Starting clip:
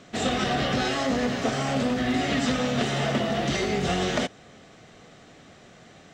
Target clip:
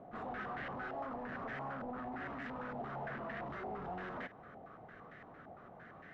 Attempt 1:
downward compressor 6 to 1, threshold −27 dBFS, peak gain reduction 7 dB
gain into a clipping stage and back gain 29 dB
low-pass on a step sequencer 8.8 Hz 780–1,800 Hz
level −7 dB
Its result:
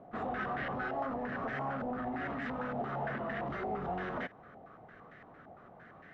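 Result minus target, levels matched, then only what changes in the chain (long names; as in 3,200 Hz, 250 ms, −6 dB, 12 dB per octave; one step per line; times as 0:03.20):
gain into a clipping stage and back: distortion −6 dB
change: gain into a clipping stage and back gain 37.5 dB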